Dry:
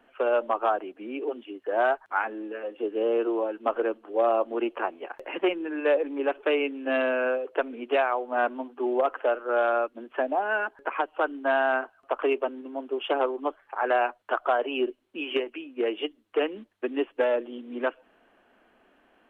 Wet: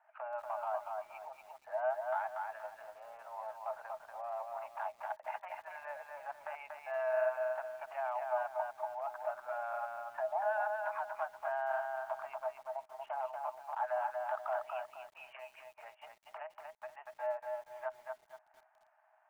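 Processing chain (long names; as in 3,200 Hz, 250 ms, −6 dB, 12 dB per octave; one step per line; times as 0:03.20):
low-pass filter 1,500 Hz 24 dB per octave
transient designer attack +8 dB, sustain −5 dB
brickwall limiter −23 dBFS, peak gain reduction 18 dB
Chebyshev high-pass with heavy ripple 610 Hz, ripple 9 dB
feedback echo at a low word length 237 ms, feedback 35%, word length 11 bits, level −3.5 dB
level +1.5 dB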